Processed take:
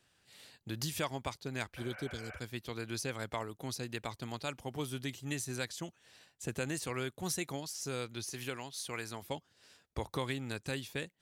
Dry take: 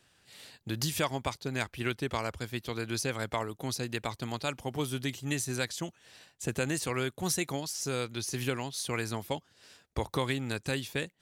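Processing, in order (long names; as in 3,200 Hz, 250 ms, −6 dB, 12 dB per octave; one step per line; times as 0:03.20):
0:01.79–0:02.36: healed spectral selection 510–3,000 Hz after
0:08.30–0:09.22: low-shelf EQ 380 Hz −6.5 dB
level −5.5 dB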